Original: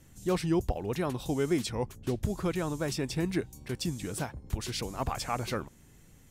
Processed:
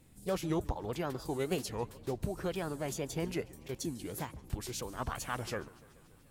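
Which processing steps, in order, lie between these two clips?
formant shift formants +4 st; wow and flutter 75 cents; modulated delay 144 ms, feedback 69%, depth 202 cents, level -22 dB; trim -5 dB

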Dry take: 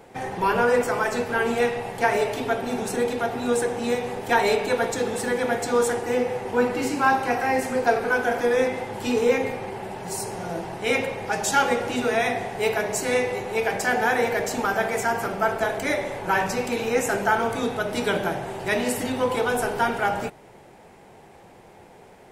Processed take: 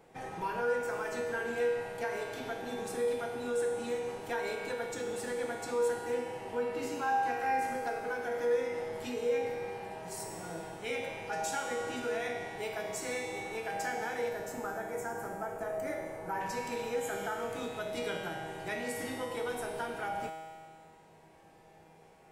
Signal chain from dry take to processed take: 14.29–16.41 s: peaking EQ 3.5 kHz -14.5 dB 1.4 oct; 16.98–17.29 s: spectral replace 2–6.4 kHz after; compression 3:1, threshold -23 dBFS, peak gain reduction 7.5 dB; feedback comb 160 Hz, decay 1.9 s, mix 90%; trim +6.5 dB

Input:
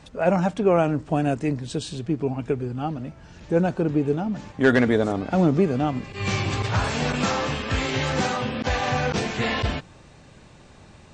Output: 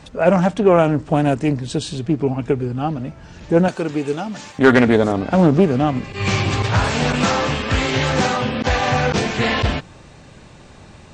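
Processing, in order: 3.68–4.59 s: tilt EQ +3.5 dB/octave; loudspeaker Doppler distortion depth 0.21 ms; trim +6 dB

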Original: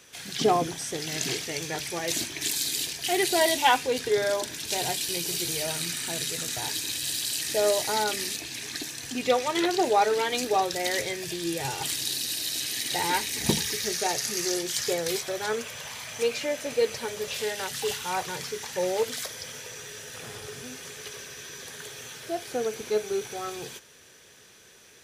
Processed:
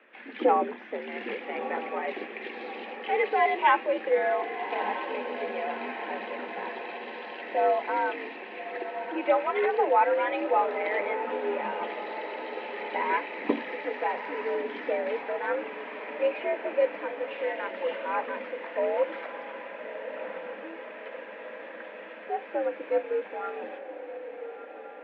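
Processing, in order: echo that smears into a reverb 1256 ms, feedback 60%, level -10 dB; mistuned SSB +75 Hz 160–2400 Hz

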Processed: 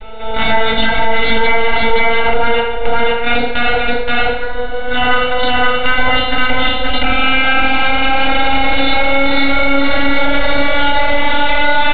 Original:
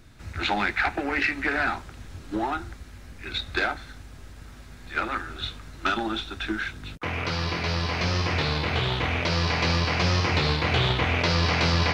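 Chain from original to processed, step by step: vocoder on a note that slides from A3, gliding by +5 st; full-wave rectifier; in parallel at -3.5 dB: bit crusher 5-bit; on the sum: steep low-pass 3.9 kHz 96 dB/octave; comb 1.4 ms, depth 77%; delay 524 ms -4.5 dB; FDN reverb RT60 0.47 s, low-frequency decay 0.8×, high-frequency decay 0.95×, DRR -1 dB; compression 6:1, threshold -27 dBFS, peak gain reduction 17.5 dB; loudness maximiser +23.5 dB; trim -1 dB

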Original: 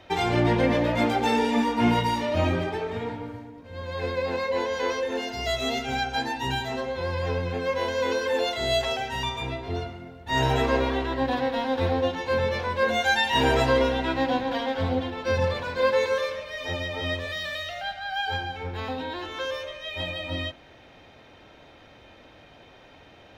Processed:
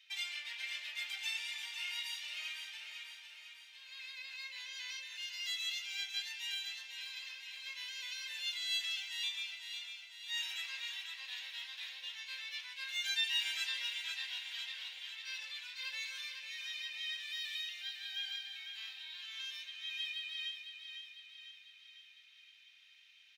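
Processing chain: Chebyshev high-pass 2.5 kHz, order 3; on a send: feedback delay 501 ms, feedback 56%, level -7.5 dB; on the sum: trim -5.5 dB

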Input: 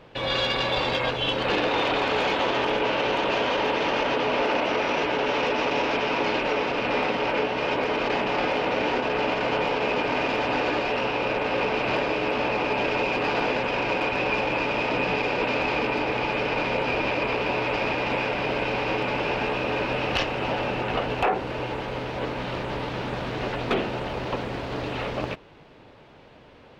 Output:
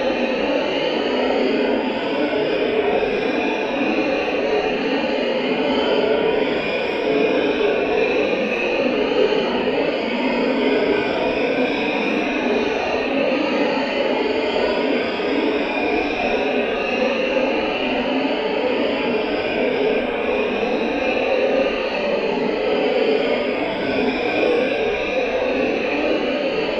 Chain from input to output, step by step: drifting ripple filter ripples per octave 1.7, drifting +1.8 Hz, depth 16 dB; peaking EQ 340 Hz -5 dB 0.25 oct; hum notches 60/120 Hz; on a send: bucket-brigade echo 216 ms, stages 4096, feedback 81%, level -5 dB; on the sum: Paulstretch 7.7×, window 0.05 s, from 8.78 s; graphic EQ 125/250/500/1000/4000 Hz -9/+10/+6/-7/+5 dB; trim -3 dB

